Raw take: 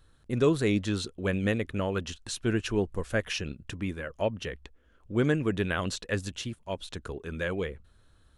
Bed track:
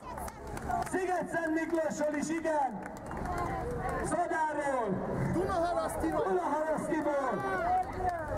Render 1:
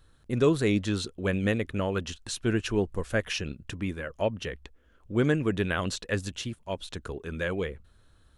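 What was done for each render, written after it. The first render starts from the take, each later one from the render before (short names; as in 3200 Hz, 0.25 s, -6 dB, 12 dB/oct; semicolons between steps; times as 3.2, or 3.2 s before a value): gain +1 dB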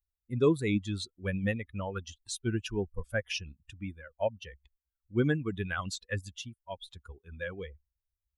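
per-bin expansion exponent 2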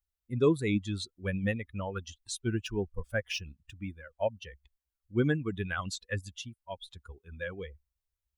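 2.41–4.36 median filter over 3 samples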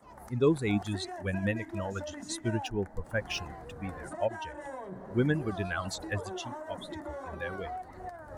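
add bed track -10 dB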